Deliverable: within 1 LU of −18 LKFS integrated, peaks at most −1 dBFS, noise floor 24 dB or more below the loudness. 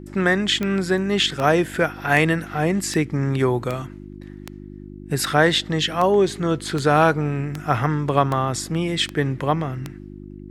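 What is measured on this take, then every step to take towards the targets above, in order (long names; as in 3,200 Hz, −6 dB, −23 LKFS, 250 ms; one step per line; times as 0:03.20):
number of clicks 13; mains hum 50 Hz; hum harmonics up to 350 Hz; level of the hum −35 dBFS; integrated loudness −21.0 LKFS; sample peak −1.0 dBFS; target loudness −18.0 LKFS
→ click removal
hum removal 50 Hz, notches 7
level +3 dB
brickwall limiter −1 dBFS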